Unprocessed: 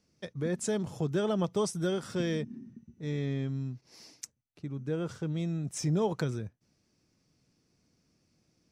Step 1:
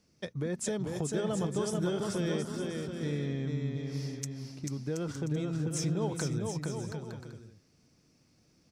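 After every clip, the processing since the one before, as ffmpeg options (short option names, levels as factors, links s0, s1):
-filter_complex "[0:a]acompressor=threshold=0.0178:ratio=3,asplit=2[s0][s1];[s1]aecho=0:1:440|726|911.9|1033|1111:0.631|0.398|0.251|0.158|0.1[s2];[s0][s2]amix=inputs=2:normalize=0,volume=1.41"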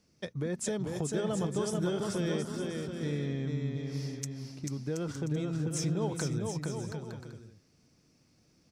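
-af anull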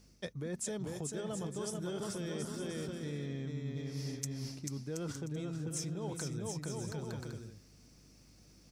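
-af "aeval=exprs='val(0)+0.000501*(sin(2*PI*50*n/s)+sin(2*PI*2*50*n/s)/2+sin(2*PI*3*50*n/s)/3+sin(2*PI*4*50*n/s)/4+sin(2*PI*5*50*n/s)/5)':c=same,areverse,acompressor=threshold=0.01:ratio=6,areverse,highshelf=f=6300:g=8,volume=1.41"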